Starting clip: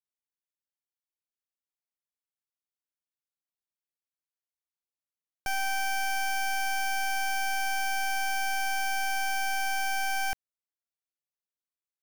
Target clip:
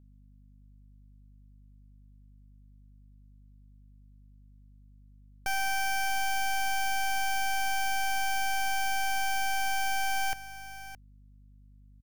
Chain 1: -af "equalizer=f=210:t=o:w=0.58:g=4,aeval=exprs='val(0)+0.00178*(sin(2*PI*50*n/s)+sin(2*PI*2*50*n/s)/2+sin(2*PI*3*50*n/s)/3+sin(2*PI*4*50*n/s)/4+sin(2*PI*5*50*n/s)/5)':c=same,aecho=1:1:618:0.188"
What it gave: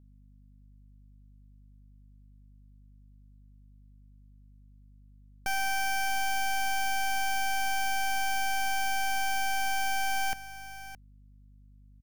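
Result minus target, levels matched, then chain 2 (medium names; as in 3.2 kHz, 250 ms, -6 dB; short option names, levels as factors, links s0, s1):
250 Hz band +3.0 dB
-af "equalizer=f=210:t=o:w=0.58:g=-5.5,aeval=exprs='val(0)+0.00178*(sin(2*PI*50*n/s)+sin(2*PI*2*50*n/s)/2+sin(2*PI*3*50*n/s)/3+sin(2*PI*4*50*n/s)/4+sin(2*PI*5*50*n/s)/5)':c=same,aecho=1:1:618:0.188"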